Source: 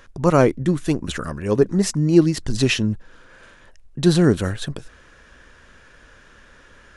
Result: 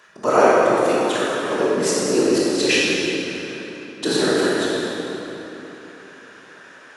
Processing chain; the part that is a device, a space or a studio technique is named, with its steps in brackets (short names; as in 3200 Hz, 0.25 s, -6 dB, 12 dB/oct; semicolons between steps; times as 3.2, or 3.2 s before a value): whispering ghost (whisperiser; HPF 460 Hz 12 dB/oct; reverb RT60 3.6 s, pre-delay 18 ms, DRR -7 dB); gain -1 dB